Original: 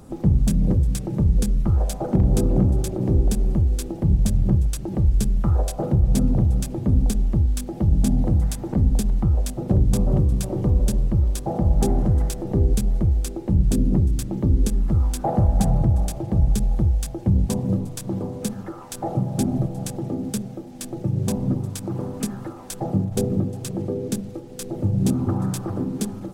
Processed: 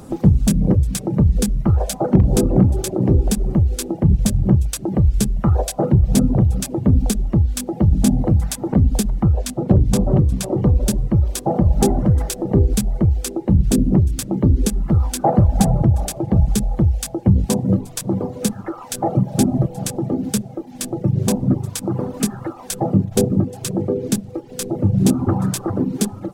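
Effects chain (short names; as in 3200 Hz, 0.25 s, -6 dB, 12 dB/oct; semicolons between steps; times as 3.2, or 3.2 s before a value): 9.28–10.88 high shelf 10000 Hz -6 dB; reverb removal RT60 0.73 s; low shelf 71 Hz -8.5 dB; gain +8 dB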